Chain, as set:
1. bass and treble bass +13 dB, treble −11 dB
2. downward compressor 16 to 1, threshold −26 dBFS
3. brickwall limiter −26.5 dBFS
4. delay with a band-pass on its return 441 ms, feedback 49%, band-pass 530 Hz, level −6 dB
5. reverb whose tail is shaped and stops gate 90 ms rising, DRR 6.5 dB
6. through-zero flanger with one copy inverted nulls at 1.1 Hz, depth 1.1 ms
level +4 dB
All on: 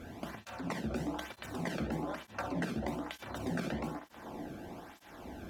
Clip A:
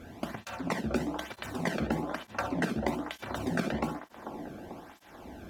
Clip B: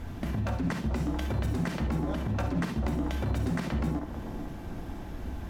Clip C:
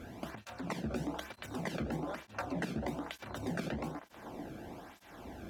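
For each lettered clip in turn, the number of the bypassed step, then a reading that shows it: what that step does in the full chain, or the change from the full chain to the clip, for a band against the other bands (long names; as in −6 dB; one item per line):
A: 3, average gain reduction 2.0 dB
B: 6, 125 Hz band +10.0 dB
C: 5, change in integrated loudness −1.0 LU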